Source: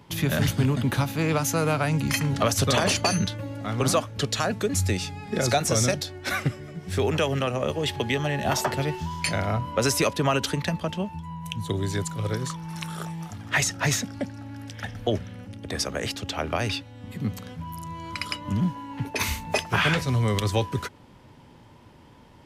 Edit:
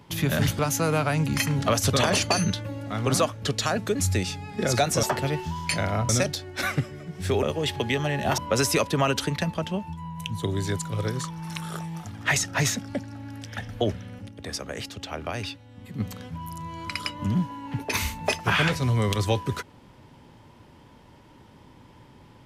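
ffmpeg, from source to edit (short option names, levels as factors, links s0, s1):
-filter_complex "[0:a]asplit=8[s0][s1][s2][s3][s4][s5][s6][s7];[s0]atrim=end=0.592[s8];[s1]atrim=start=1.328:end=5.772[s9];[s2]atrim=start=8.578:end=9.642[s10];[s3]atrim=start=5.768:end=7.112[s11];[s4]atrim=start=7.628:end=8.582[s12];[s5]atrim=start=9.638:end=15.552[s13];[s6]atrim=start=15.548:end=17.262,asetpts=PTS-STARTPTS,volume=0.562[s14];[s7]atrim=start=17.258[s15];[s8][s9]acrossfade=d=0.004:c1=hsin:c2=hsin[s16];[s16][s10]acrossfade=d=0.004:c1=hsin:c2=hsin[s17];[s17][s11]acrossfade=d=0.004:c1=hsin:c2=hsin[s18];[s18][s12]acrossfade=d=0.004:c1=hsin:c2=hsin[s19];[s19][s13]acrossfade=d=0.004:c1=hsin:c2=hsin[s20];[s20][s14]acrossfade=d=0.004:c1=hsin:c2=hsin[s21];[s21][s15]acrossfade=d=0.004:c1=hsin:c2=hsin"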